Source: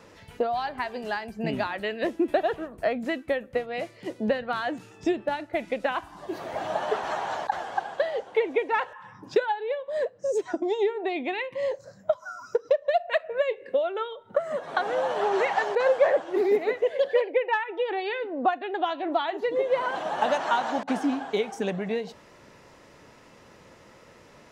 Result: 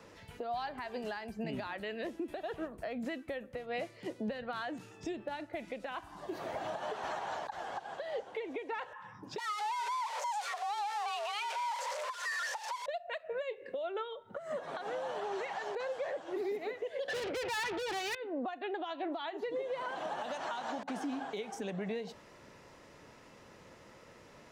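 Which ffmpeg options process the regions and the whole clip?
-filter_complex "[0:a]asettb=1/sr,asplit=3[s0][s1][s2];[s0]atrim=end=9.384[s3];[s1]atrim=start=9.38:end=12.86,asetpts=PTS-STARTPTS,afade=t=in:d=0.004:c=qsin,afade=t=out:st=3.476:d=0.004:c=qsin,aeval=exprs='val(0)+0.5*0.0447*sgn(val(0))':c=same,lowpass=7400,afreqshift=410[s4];[s2]atrim=start=12.856[s5];[s3][s4]acrossfade=d=0.004:c1=hsin:c2=qsin[s6];[s6][s5]acrossfade=d=0.004:c1=qsin:c2=hsin,asettb=1/sr,asplit=3[s7][s8][s9];[s7]atrim=end=17.084[s10];[s8]atrim=start=17.08:end=18.15,asetpts=PTS-STARTPTS,afade=t=in:d=0.004:c=qsin,afade=t=out:st=1.066:d=0.004:c=qsin,asplit=2[s11][s12];[s12]highpass=f=720:p=1,volume=56.2,asoftclip=type=tanh:threshold=0.299[s13];[s11][s13]amix=inputs=2:normalize=0,lowpass=f=2500:p=1,volume=0.501,highpass=100[s14];[s9]atrim=start=18.146[s15];[s10][s14]acrossfade=d=0.004:c1=hsin:c2=qsin[s16];[s16][s15]acrossfade=d=0.004:c1=qsin:c2=hsin,acrossover=split=140|3000[s17][s18][s19];[s18]acompressor=threshold=0.0501:ratio=6[s20];[s17][s20][s19]amix=inputs=3:normalize=0,alimiter=level_in=1.19:limit=0.0631:level=0:latency=1:release=140,volume=0.841,volume=0.631"

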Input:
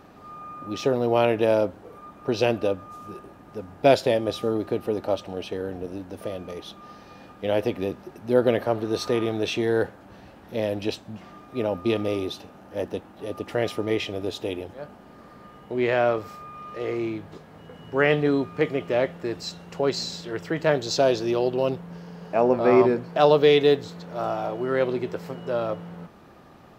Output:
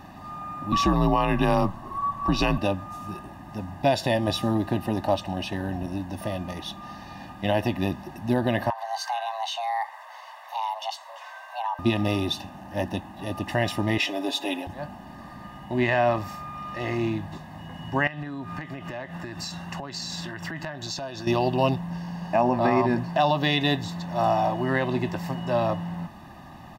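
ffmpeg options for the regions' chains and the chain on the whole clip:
-filter_complex "[0:a]asettb=1/sr,asplit=3[s0][s1][s2];[s0]atrim=end=0.724[s3];[s1]atrim=start=0.72:end=2.58,asetpts=PTS-STARTPTS,afade=t=in:d=0.004:c=qsin,afade=t=out:st=1.856:d=0.004:c=qsin,equalizer=f=1200:t=o:w=0.36:g=12,afreqshift=-78[s4];[s2]atrim=start=2.576[s5];[s3][s4]acrossfade=d=0.004:c1=hsin:c2=qsin[s6];[s6][s5]acrossfade=d=0.004:c1=qsin:c2=hsin,asettb=1/sr,asplit=3[s7][s8][s9];[s7]atrim=end=8.704[s10];[s8]atrim=start=8.7:end=11.79,asetpts=PTS-STARTPTS,afade=t=in:d=0.004:c=qsin,afade=t=out:st=3.086:d=0.004:c=qsin,highpass=370,afreqshift=350,acompressor=threshold=0.00891:ratio=2:attack=3.2:release=140:knee=1:detection=peak[s11];[s9]atrim=start=11.786[s12];[s10][s11]acrossfade=d=0.004:c1=hsin:c2=qsin[s13];[s13][s12]acrossfade=d=0.004:c1=qsin:c2=hsin,asettb=1/sr,asplit=3[s14][s15][s16];[s14]atrim=end=13.984[s17];[s15]atrim=start=13.98:end=14.67,asetpts=PTS-STARTPTS,afade=t=in:d=0.004:c=qsin,afade=t=out:st=0.686:d=0.004:c=qsin,highpass=f=270:w=0.5412,highpass=f=270:w=1.3066,aecho=1:1:7.1:0.68,atrim=end_sample=30429[s18];[s16]atrim=start=14.666[s19];[s17][s18]acrossfade=d=0.004:c1=hsin:c2=qsin[s20];[s20][s19]acrossfade=d=0.004:c1=qsin:c2=hsin,asettb=1/sr,asplit=3[s21][s22][s23];[s21]atrim=end=18.074[s24];[s22]atrim=start=18.07:end=21.27,asetpts=PTS-STARTPTS,afade=t=in:d=0.004:c=qsin,afade=t=out:st=3.196:d=0.004:c=qsin,highpass=62,equalizer=f=1400:w=2.8:g=8,acompressor=threshold=0.02:ratio=8:attack=3.2:release=140:knee=1:detection=peak[s25];[s23]atrim=start=21.266[s26];[s24][s25]acrossfade=d=0.004:c1=hsin:c2=qsin[s27];[s27][s26]acrossfade=d=0.004:c1=qsin:c2=hsin,aecho=1:1:1.1:0.97,alimiter=limit=0.188:level=0:latency=1:release=166,volume=1.41"

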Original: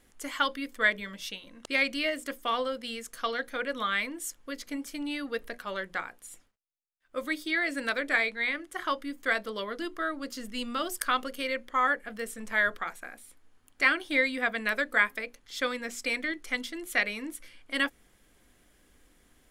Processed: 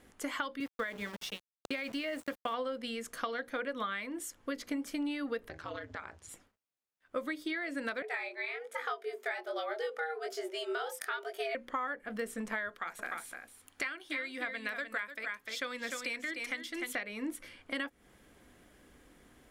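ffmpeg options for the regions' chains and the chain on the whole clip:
-filter_complex "[0:a]asettb=1/sr,asplit=3[s0][s1][s2];[s0]atrim=end=0.604[s3];[s1]atrim=start=0.6:end=2.54,asetpts=PTS-STARTPTS,afade=t=in:d=0.004:c=qsin,afade=t=out:st=1.936:d=0.004:c=qsin,agate=range=0.0224:threshold=0.01:ratio=3:release=100:detection=peak,acompressor=threshold=0.0447:ratio=5:attack=3.2:release=140:knee=1:detection=peak,aeval=exprs='val(0)*gte(abs(val(0)),0.00708)':c=same[s4];[s2]atrim=start=2.536[s5];[s3][s4]acrossfade=d=0.004:c1=hsin:c2=qsin[s6];[s6][s5]acrossfade=d=0.004:c1=qsin:c2=hsin,asettb=1/sr,asplit=3[s7][s8][s9];[s7]atrim=end=5.494[s10];[s8]atrim=start=5.49:end=6.29,asetpts=PTS-STARTPTS,afade=t=in:d=0.004:c=qsin,afade=t=out:st=0.796:d=0.004:c=qsin,acompressor=threshold=0.00891:ratio=4:attack=3.2:release=140:knee=1:detection=peak,aeval=exprs='val(0)*sin(2*PI*81*n/s)':c=same,lowpass=f=6200:t=q:w=1.7[s11];[s9]atrim=start=6.286[s12];[s10][s11]acrossfade=d=0.004:c1=hsin:c2=qsin[s13];[s13][s12]acrossfade=d=0.004:c1=qsin:c2=hsin,asettb=1/sr,asplit=3[s14][s15][s16];[s14]atrim=end=8.024[s17];[s15]atrim=start=8.02:end=11.55,asetpts=PTS-STARTPTS,afade=t=in:d=0.004:c=qsin,afade=t=out:st=3.526:d=0.004:c=qsin,highpass=f=89:w=0.5412,highpass=f=89:w=1.3066,flanger=delay=17.5:depth=7.8:speed=1.2,afreqshift=150[s18];[s16]atrim=start=11.546[s19];[s17][s18]acrossfade=d=0.004:c1=hsin:c2=qsin[s20];[s20][s19]acrossfade=d=0.004:c1=qsin:c2=hsin,asettb=1/sr,asplit=3[s21][s22][s23];[s21]atrim=end=12.694[s24];[s22]atrim=start=12.69:end=16.95,asetpts=PTS-STARTPTS,afade=t=in:d=0.004:c=qsin,afade=t=out:st=4.256:d=0.004:c=qsin,tiltshelf=f=1200:g=-5,aecho=1:1:300:0.376,atrim=end_sample=187866[s25];[s23]atrim=start=16.946[s26];[s24][s25]acrossfade=d=0.004:c1=hsin:c2=qsin[s27];[s27][s26]acrossfade=d=0.004:c1=qsin:c2=hsin,acompressor=threshold=0.0141:ratio=12,highpass=f=76:p=1,highshelf=f=2500:g=-8.5,volume=2"

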